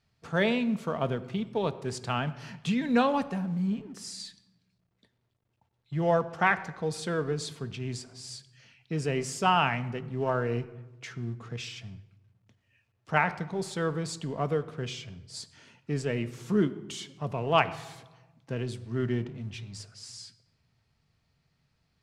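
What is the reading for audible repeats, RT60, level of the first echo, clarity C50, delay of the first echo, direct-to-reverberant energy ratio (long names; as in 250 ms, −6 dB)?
no echo audible, 1.0 s, no echo audible, 16.0 dB, no echo audible, 10.5 dB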